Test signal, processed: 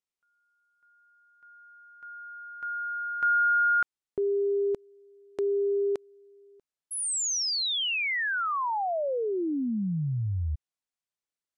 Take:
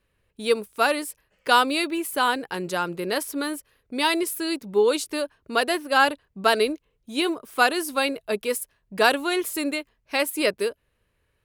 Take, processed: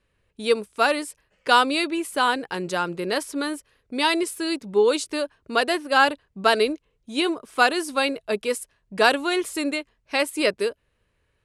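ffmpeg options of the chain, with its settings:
ffmpeg -i in.wav -af "lowpass=frequency=9800:width=0.5412,lowpass=frequency=9800:width=1.3066,volume=1dB" out.wav

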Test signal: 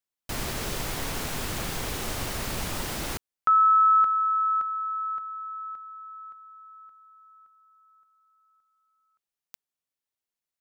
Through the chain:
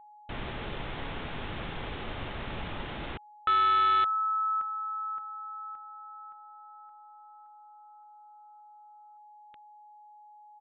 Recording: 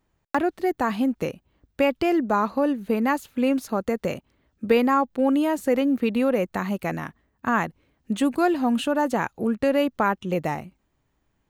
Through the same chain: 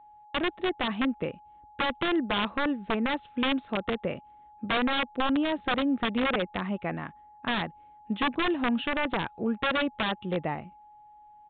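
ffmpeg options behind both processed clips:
ffmpeg -i in.wav -af "aeval=exprs='val(0)+0.00501*sin(2*PI*840*n/s)':channel_layout=same,aeval=exprs='(mod(5.62*val(0)+1,2)-1)/5.62':channel_layout=same,aresample=8000,aresample=44100,volume=-4.5dB" out.wav

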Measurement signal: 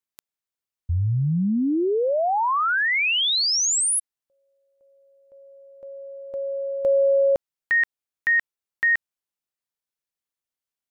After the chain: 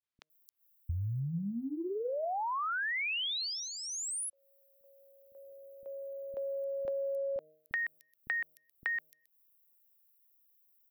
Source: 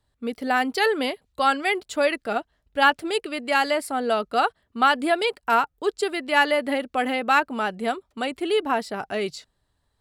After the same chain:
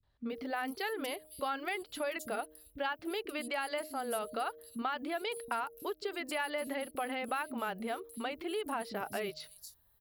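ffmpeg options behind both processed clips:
ffmpeg -i in.wav -filter_complex "[0:a]aexciter=amount=12:drive=8.3:freq=11000,bandreject=frequency=154.8:width_type=h:width=4,bandreject=frequency=309.6:width_type=h:width=4,bandreject=frequency=464.4:width_type=h:width=4,bandreject=frequency=619.2:width_type=h:width=4,acompressor=threshold=-31dB:ratio=6:attack=25:release=120:knee=6:detection=rms,acrossover=split=280|5700[link_01][link_02][link_03];[link_02]adelay=30[link_04];[link_03]adelay=300[link_05];[link_01][link_04][link_05]amix=inputs=3:normalize=0,acrossover=split=9600[link_06][link_07];[link_07]acompressor=threshold=-52dB:ratio=4:attack=1:release=60[link_08];[link_06][link_08]amix=inputs=2:normalize=0,volume=-3dB" out.wav

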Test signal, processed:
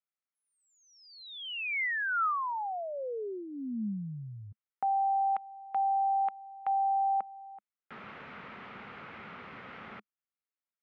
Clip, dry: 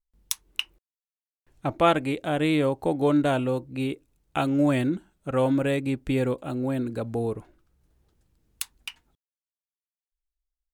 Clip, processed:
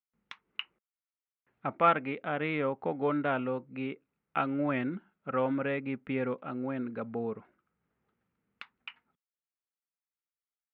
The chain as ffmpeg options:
ffmpeg -i in.wav -af "aeval=exprs='0.316*(abs(mod(val(0)/0.316+3,4)-2)-1)':channel_layout=same,highpass=190,equalizer=frequency=210:width_type=q:width=4:gain=5,equalizer=frequency=320:width_type=q:width=4:gain=-8,equalizer=frequency=620:width_type=q:width=4:gain=-3,equalizer=frequency=1300:width_type=q:width=4:gain=7,equalizer=frequency=2100:width_type=q:width=4:gain=4,lowpass=frequency=2700:width=0.5412,lowpass=frequency=2700:width=1.3066,volume=-5dB" out.wav

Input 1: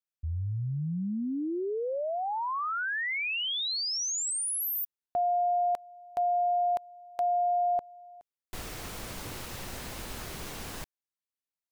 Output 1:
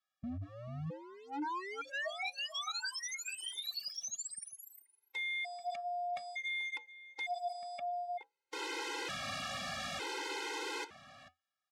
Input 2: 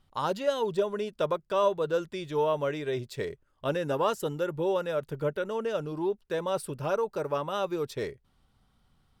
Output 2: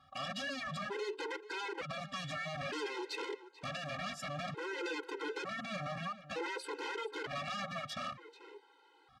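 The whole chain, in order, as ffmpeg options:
ffmpeg -i in.wav -filter_complex "[0:a]acrossover=split=4100[link_01][link_02];[link_02]acompressor=threshold=-42dB:ratio=4:attack=1:release=60[link_03];[link_01][link_03]amix=inputs=2:normalize=0,equalizer=frequency=1200:width=0.34:gain=12,aecho=1:1:2.4:0.56,acompressor=threshold=-26dB:ratio=16:attack=0.57:release=55:knee=1:detection=rms,flanger=delay=4.6:depth=1.9:regen=-80:speed=0.61:shape=triangular,aeval=exprs='0.0126*(abs(mod(val(0)/0.0126+3,4)-2)-1)':channel_layout=same,highpass=120,lowpass=6800,asplit=2[link_04][link_05];[link_05]adelay=437.3,volume=-14dB,highshelf=frequency=4000:gain=-9.84[link_06];[link_04][link_06]amix=inputs=2:normalize=0,afftfilt=real='re*gt(sin(2*PI*0.55*pts/sr)*(1-2*mod(floor(b*sr/1024/270),2)),0)':imag='im*gt(sin(2*PI*0.55*pts/sr)*(1-2*mod(floor(b*sr/1024/270),2)),0)':win_size=1024:overlap=0.75,volume=6.5dB" out.wav

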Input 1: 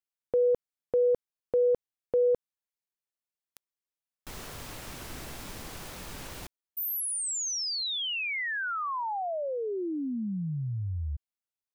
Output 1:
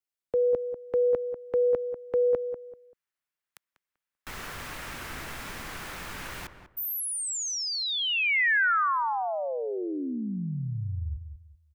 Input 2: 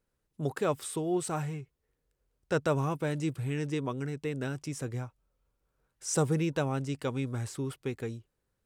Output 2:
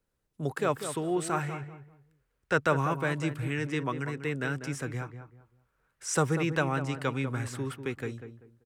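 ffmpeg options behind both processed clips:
ffmpeg -i in.wav -filter_complex "[0:a]acrossover=split=210|1400|2000[link_01][link_02][link_03][link_04];[link_03]dynaudnorm=framelen=110:gausssize=13:maxgain=14dB[link_05];[link_01][link_02][link_05][link_04]amix=inputs=4:normalize=0,asplit=2[link_06][link_07];[link_07]adelay=194,lowpass=frequency=1400:poles=1,volume=-9dB,asplit=2[link_08][link_09];[link_09]adelay=194,lowpass=frequency=1400:poles=1,volume=0.28,asplit=2[link_10][link_11];[link_11]adelay=194,lowpass=frequency=1400:poles=1,volume=0.28[link_12];[link_06][link_08][link_10][link_12]amix=inputs=4:normalize=0" out.wav

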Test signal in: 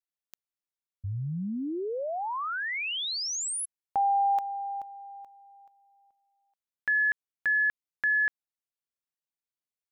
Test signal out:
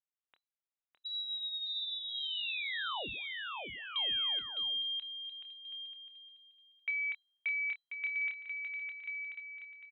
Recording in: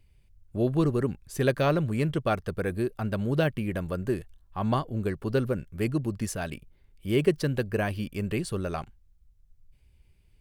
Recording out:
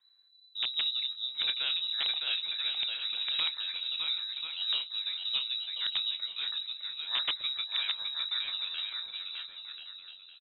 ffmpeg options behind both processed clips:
ffmpeg -i in.wav -filter_complex "[0:a]equalizer=frequency=590:width_type=o:width=0.37:gain=-10.5,asplit=2[link_01][link_02];[link_02]adelay=26,volume=-10dB[link_03];[link_01][link_03]amix=inputs=2:normalize=0,aecho=1:1:610|1037|1336|1545|1692:0.631|0.398|0.251|0.158|0.1,acrossover=split=110|650|1800[link_04][link_05][link_06][link_07];[link_05]aeval=exprs='(mod(7.08*val(0)+1,2)-1)/7.08':channel_layout=same[link_08];[link_04][link_08][link_06][link_07]amix=inputs=4:normalize=0,lowpass=frequency=3400:width_type=q:width=0.5098,lowpass=frequency=3400:width_type=q:width=0.6013,lowpass=frequency=3400:width_type=q:width=0.9,lowpass=frequency=3400:width_type=q:width=2.563,afreqshift=-4000,volume=-7dB" out.wav

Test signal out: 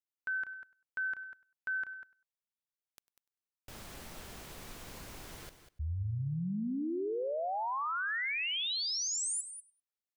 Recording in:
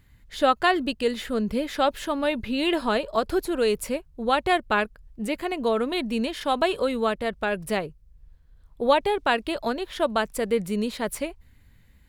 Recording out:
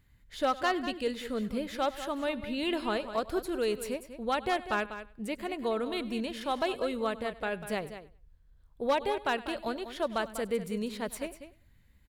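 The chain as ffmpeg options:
ffmpeg -i in.wav -filter_complex "[0:a]asplit=2[link_01][link_02];[link_02]aecho=0:1:99|198:0.106|0.0265[link_03];[link_01][link_03]amix=inputs=2:normalize=0,volume=13dB,asoftclip=hard,volume=-13dB,asplit=2[link_04][link_05];[link_05]aecho=0:1:195:0.266[link_06];[link_04][link_06]amix=inputs=2:normalize=0,volume=-7.5dB" out.wav

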